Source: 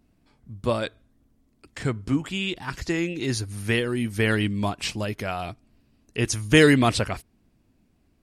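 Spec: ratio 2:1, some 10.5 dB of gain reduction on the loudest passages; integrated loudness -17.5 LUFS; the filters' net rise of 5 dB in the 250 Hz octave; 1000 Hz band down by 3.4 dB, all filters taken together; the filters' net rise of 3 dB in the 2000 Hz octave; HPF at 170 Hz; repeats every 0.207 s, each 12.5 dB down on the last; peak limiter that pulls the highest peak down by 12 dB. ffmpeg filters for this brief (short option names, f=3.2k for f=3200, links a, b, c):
-af "highpass=170,equalizer=f=250:t=o:g=7.5,equalizer=f=1k:t=o:g=-7.5,equalizer=f=2k:t=o:g=5.5,acompressor=threshold=-28dB:ratio=2,alimiter=limit=-21dB:level=0:latency=1,aecho=1:1:207|414|621:0.237|0.0569|0.0137,volume=14.5dB"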